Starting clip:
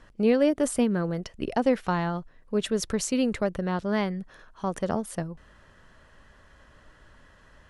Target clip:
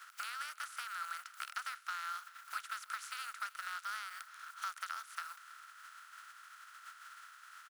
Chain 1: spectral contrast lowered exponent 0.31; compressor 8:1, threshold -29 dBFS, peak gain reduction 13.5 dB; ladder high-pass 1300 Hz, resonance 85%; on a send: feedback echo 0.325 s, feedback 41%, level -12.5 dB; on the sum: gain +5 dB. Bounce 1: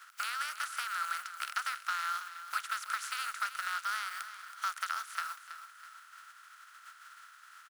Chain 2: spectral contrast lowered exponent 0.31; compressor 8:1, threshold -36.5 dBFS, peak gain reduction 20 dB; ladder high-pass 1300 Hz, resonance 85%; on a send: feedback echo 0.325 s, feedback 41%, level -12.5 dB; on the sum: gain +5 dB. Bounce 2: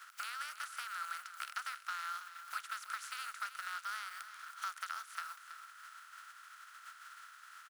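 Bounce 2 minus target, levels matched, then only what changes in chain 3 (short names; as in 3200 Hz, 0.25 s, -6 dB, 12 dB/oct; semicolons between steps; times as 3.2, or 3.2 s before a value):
echo-to-direct +9 dB
change: feedback echo 0.325 s, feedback 41%, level -21.5 dB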